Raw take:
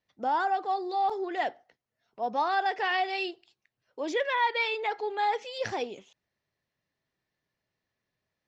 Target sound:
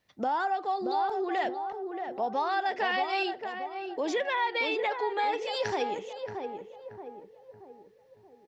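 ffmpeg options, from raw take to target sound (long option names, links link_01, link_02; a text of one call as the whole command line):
ffmpeg -i in.wav -filter_complex "[0:a]acompressor=threshold=-40dB:ratio=2.5,asplit=2[link_01][link_02];[link_02]adelay=628,lowpass=frequency=1000:poles=1,volume=-4.5dB,asplit=2[link_03][link_04];[link_04]adelay=628,lowpass=frequency=1000:poles=1,volume=0.52,asplit=2[link_05][link_06];[link_06]adelay=628,lowpass=frequency=1000:poles=1,volume=0.52,asplit=2[link_07][link_08];[link_08]adelay=628,lowpass=frequency=1000:poles=1,volume=0.52,asplit=2[link_09][link_10];[link_10]adelay=628,lowpass=frequency=1000:poles=1,volume=0.52,asplit=2[link_11][link_12];[link_12]adelay=628,lowpass=frequency=1000:poles=1,volume=0.52,asplit=2[link_13][link_14];[link_14]adelay=628,lowpass=frequency=1000:poles=1,volume=0.52[link_15];[link_01][link_03][link_05][link_07][link_09][link_11][link_13][link_15]amix=inputs=8:normalize=0,volume=8.5dB" out.wav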